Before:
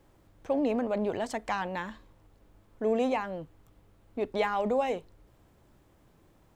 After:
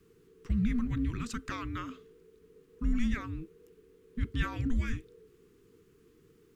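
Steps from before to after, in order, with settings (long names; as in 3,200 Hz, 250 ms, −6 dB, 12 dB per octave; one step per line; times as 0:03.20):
flat-topped bell 970 Hz −16 dB 1.1 octaves
frequency shifter −480 Hz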